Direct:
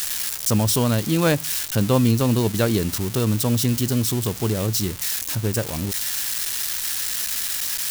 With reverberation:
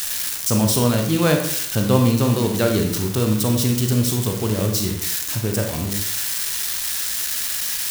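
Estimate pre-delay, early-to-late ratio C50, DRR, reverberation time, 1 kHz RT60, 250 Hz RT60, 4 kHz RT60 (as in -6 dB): 30 ms, 5.5 dB, 3.0 dB, 0.70 s, 0.70 s, 0.65 s, 0.55 s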